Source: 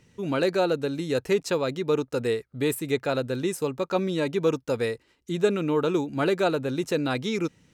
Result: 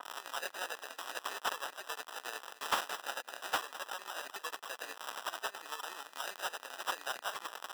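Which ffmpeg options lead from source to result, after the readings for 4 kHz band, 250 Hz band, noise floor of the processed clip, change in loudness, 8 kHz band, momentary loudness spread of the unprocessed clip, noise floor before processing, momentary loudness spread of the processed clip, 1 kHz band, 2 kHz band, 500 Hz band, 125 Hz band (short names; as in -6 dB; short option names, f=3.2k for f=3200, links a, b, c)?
-4.5 dB, -33.0 dB, -58 dBFS, -13.5 dB, -3.5 dB, 5 LU, -65 dBFS, 6 LU, -5.5 dB, -5.5 dB, -23.5 dB, under -35 dB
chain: -filter_complex "[0:a]aeval=exprs='val(0)+0.5*0.0133*sgn(val(0))':c=same,tremolo=f=11:d=0.65,asplit=2[a][b];[b]acompressor=threshold=-32dB:ratio=6,volume=-0.5dB[c];[a][c]amix=inputs=2:normalize=0,aderivative,acrusher=samples=20:mix=1:aa=0.000001,highpass=1.1k,aecho=1:1:209:0.133,asoftclip=type=tanh:threshold=-28dB,adynamicequalizer=threshold=0.00178:dfrequency=2700:dqfactor=0.7:tfrequency=2700:tqfactor=0.7:attack=5:release=100:ratio=0.375:range=2:mode=cutabove:tftype=highshelf,volume=8.5dB"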